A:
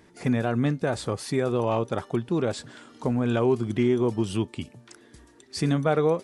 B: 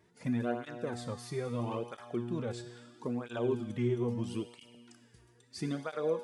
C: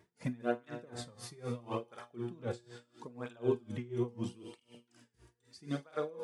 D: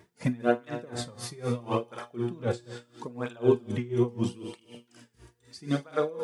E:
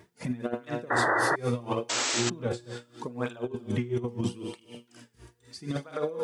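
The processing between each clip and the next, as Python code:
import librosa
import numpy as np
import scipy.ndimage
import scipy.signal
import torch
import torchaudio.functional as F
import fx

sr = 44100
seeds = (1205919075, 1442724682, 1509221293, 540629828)

y1 = fx.comb_fb(x, sr, f0_hz=120.0, decay_s=1.6, harmonics='all', damping=0.0, mix_pct=80)
y1 = fx.flanger_cancel(y1, sr, hz=0.76, depth_ms=4.0)
y1 = F.gain(torch.from_numpy(y1), 4.0).numpy()
y2 = fx.room_flutter(y1, sr, wall_m=8.2, rt60_s=0.27)
y2 = y2 * 10.0 ** (-24 * (0.5 - 0.5 * np.cos(2.0 * np.pi * 4.0 * np.arange(len(y2)) / sr)) / 20.0)
y2 = F.gain(torch.from_numpy(y2), 2.5).numpy()
y3 = y2 + 10.0 ** (-21.5 / 20.0) * np.pad(y2, (int(225 * sr / 1000.0), 0))[:len(y2)]
y3 = F.gain(torch.from_numpy(y3), 9.0).numpy()
y4 = fx.spec_paint(y3, sr, seeds[0], shape='noise', start_s=1.89, length_s=0.41, low_hz=250.0, high_hz=8100.0, level_db=-31.0)
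y4 = fx.over_compress(y4, sr, threshold_db=-27.0, ratio=-0.5)
y4 = fx.spec_paint(y4, sr, seeds[1], shape='noise', start_s=0.9, length_s=0.46, low_hz=290.0, high_hz=2000.0, level_db=-25.0)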